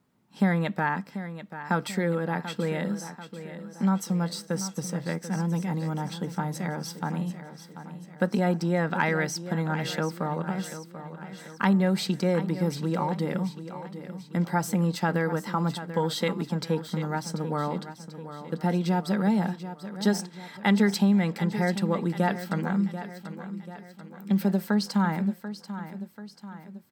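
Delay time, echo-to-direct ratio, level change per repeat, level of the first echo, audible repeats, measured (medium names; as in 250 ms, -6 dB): 738 ms, -11.0 dB, -6.0 dB, -12.0 dB, 4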